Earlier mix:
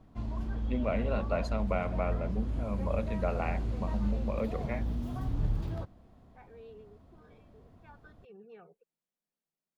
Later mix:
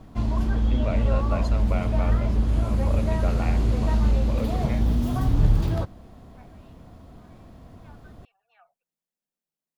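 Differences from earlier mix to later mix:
second voice: add Chebyshev band-stop filter 110–670 Hz, order 4
background +11.5 dB
master: add high-shelf EQ 4,500 Hz +6 dB

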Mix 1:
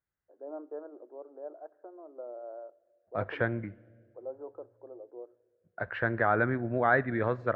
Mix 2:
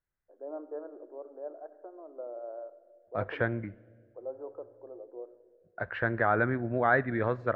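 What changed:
first voice: send +11.0 dB
second voice: remove high-pass filter 55 Hz

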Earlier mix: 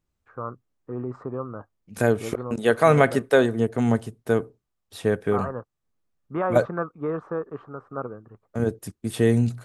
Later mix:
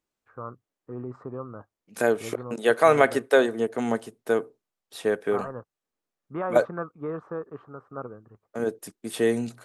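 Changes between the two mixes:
first voice −4.5 dB
second voice: add high-pass filter 310 Hz 12 dB per octave

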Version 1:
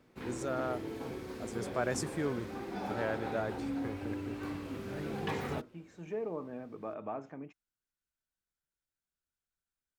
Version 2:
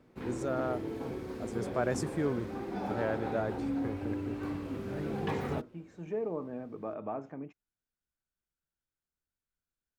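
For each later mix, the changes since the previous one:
master: add tilt shelving filter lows +3.5 dB, about 1,300 Hz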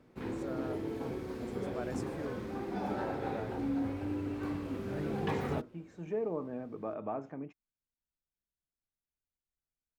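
first voice −10.5 dB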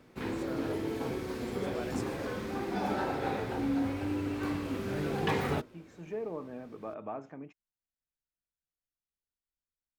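background +6.0 dB
master: add tilt shelving filter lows −3.5 dB, about 1,300 Hz

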